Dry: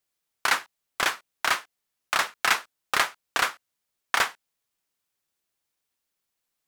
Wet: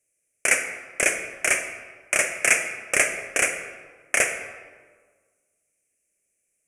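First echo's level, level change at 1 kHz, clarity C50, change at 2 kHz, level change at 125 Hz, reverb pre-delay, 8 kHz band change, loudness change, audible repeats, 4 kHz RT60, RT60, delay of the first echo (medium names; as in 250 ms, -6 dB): no echo, -7.0 dB, 7.5 dB, +4.0 dB, +5.0 dB, 30 ms, +10.5 dB, +3.5 dB, no echo, 0.95 s, 1.5 s, no echo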